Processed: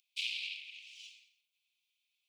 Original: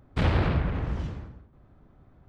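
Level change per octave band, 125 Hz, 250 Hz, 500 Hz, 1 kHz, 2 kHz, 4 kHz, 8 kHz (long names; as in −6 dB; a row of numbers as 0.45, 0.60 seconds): below −40 dB, below −40 dB, below −40 dB, below −40 dB, −5.5 dB, +4.0 dB, can't be measured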